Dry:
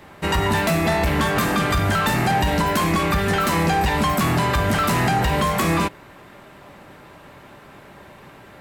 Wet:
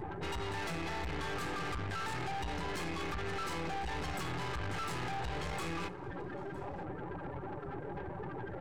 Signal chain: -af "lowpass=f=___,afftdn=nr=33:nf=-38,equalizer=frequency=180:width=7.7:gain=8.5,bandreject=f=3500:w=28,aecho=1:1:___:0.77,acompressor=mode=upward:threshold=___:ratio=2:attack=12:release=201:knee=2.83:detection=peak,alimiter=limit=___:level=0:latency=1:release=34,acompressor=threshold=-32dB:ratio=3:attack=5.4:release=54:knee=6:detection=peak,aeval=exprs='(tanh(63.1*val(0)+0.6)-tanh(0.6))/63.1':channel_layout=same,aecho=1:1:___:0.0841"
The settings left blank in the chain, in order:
9500, 2.4, -22dB, -13.5dB, 960